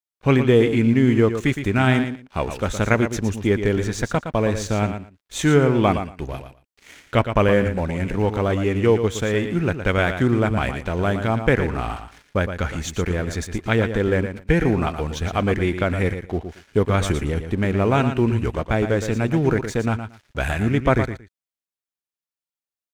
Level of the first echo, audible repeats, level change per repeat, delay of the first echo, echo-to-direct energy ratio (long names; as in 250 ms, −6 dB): −9.0 dB, 2, −16.0 dB, 115 ms, −9.0 dB